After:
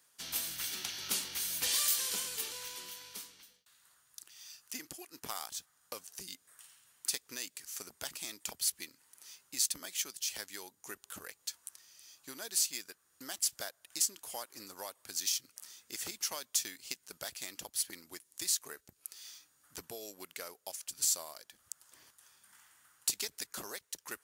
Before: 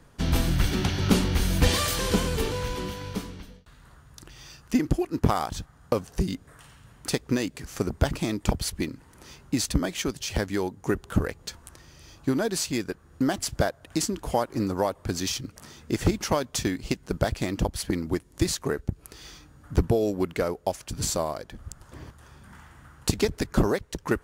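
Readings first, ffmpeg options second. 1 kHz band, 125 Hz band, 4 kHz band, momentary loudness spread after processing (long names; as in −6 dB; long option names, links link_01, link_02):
−17.5 dB, −35.0 dB, −4.5 dB, 19 LU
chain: -af "aderivative"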